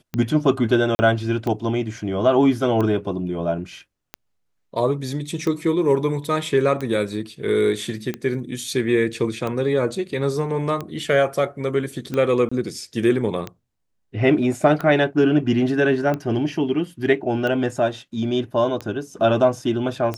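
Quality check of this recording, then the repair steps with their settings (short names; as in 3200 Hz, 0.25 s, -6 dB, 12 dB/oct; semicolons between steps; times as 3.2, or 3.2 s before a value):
tick 45 rpm -14 dBFS
0.95–0.99 gap 40 ms
12.49–12.52 gap 25 ms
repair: de-click; interpolate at 0.95, 40 ms; interpolate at 12.49, 25 ms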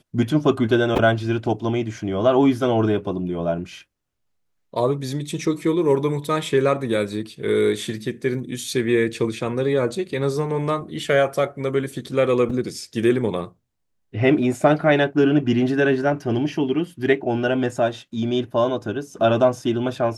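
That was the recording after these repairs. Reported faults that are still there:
none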